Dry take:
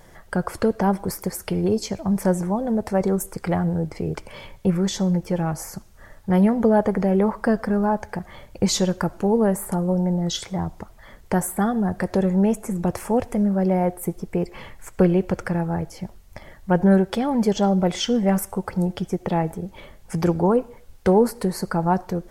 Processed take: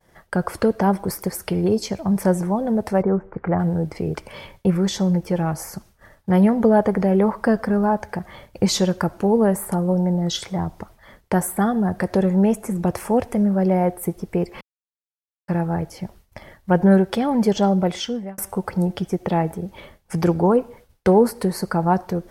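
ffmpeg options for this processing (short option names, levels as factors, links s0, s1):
-filter_complex "[0:a]asplit=3[s0][s1][s2];[s0]afade=t=out:st=3.01:d=0.02[s3];[s1]lowpass=f=1800:w=0.5412,lowpass=f=1800:w=1.3066,afade=t=in:st=3.01:d=0.02,afade=t=out:st=3.58:d=0.02[s4];[s2]afade=t=in:st=3.58:d=0.02[s5];[s3][s4][s5]amix=inputs=3:normalize=0,asplit=4[s6][s7][s8][s9];[s6]atrim=end=14.61,asetpts=PTS-STARTPTS,afade=t=out:st=14.606:d=0.004:c=hsin[s10];[s7]atrim=start=14.61:end=15.48,asetpts=PTS-STARTPTS,volume=0[s11];[s8]atrim=start=15.48:end=18.38,asetpts=PTS-STARTPTS,afade=t=in:d=0.004:c=hsin,afade=t=out:st=2.04:d=0.86:c=qsin[s12];[s9]atrim=start=18.38,asetpts=PTS-STARTPTS,afade=t=in:d=0.004:c=hsin[s13];[s10][s11][s12][s13]concat=n=4:v=0:a=1,highpass=f=54:p=1,agate=range=0.0224:threshold=0.00708:ratio=3:detection=peak,equalizer=f=7100:w=3.2:g=-4,volume=1.26"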